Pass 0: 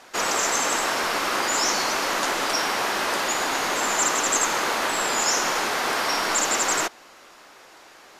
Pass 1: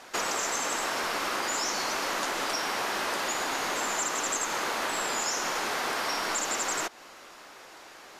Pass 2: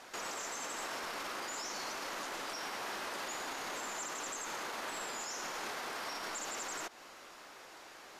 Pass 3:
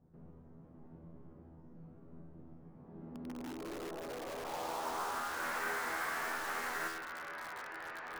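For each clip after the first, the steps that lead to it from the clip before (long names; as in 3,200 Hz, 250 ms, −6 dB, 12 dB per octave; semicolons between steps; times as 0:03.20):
downward compressor 4 to 1, threshold −28 dBFS, peak gain reduction 9 dB
brickwall limiter −27.5 dBFS, peak gain reduction 9.5 dB; level −4.5 dB
low-pass filter sweep 140 Hz → 1,700 Hz, 0:02.71–0:05.46; tuned comb filter 82 Hz, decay 0.69 s, harmonics all, mix 90%; in parallel at −2 dB: wrap-around overflow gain 53.5 dB; on the sum: level +11.5 dB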